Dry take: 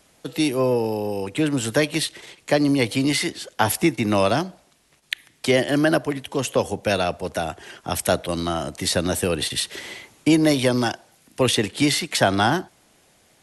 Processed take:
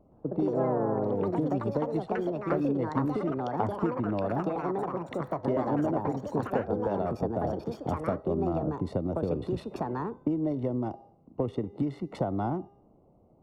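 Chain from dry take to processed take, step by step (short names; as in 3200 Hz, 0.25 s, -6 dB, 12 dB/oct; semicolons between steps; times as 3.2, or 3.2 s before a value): Wiener smoothing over 25 samples; polynomial smoothing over 65 samples; tilt shelf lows +3.5 dB, about 680 Hz; de-hum 403.1 Hz, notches 30; compressor 6:1, threshold -27 dBFS, peak gain reduction 15.5 dB; echoes that change speed 0.118 s, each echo +4 st, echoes 3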